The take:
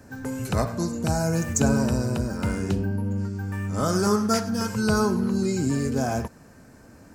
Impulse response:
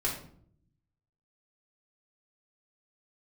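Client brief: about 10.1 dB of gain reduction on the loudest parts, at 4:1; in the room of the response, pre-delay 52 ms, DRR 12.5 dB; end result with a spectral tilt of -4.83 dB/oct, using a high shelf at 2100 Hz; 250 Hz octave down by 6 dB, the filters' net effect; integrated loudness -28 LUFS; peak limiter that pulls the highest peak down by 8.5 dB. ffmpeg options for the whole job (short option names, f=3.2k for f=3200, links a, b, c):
-filter_complex "[0:a]equalizer=f=250:t=o:g=-8,highshelf=f=2.1k:g=3,acompressor=threshold=-30dB:ratio=4,alimiter=limit=-24dB:level=0:latency=1,asplit=2[a][b];[1:a]atrim=start_sample=2205,adelay=52[c];[b][c]afir=irnorm=-1:irlink=0,volume=-18.5dB[d];[a][d]amix=inputs=2:normalize=0,volume=6.5dB"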